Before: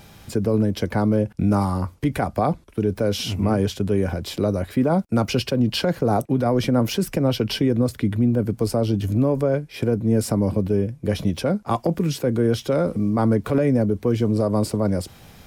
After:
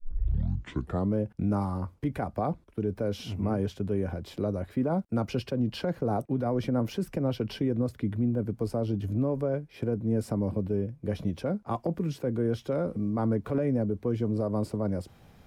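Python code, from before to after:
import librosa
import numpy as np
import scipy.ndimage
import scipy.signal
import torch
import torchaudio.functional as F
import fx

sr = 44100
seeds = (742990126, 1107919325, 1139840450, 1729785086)

y = fx.tape_start_head(x, sr, length_s=1.14)
y = fx.high_shelf(y, sr, hz=2400.0, db=-10.0)
y = F.gain(torch.from_numpy(y), -8.0).numpy()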